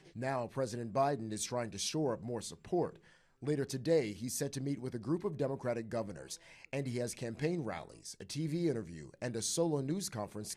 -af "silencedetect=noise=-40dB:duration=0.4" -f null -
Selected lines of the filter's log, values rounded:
silence_start: 2.90
silence_end: 3.43 | silence_duration: 0.53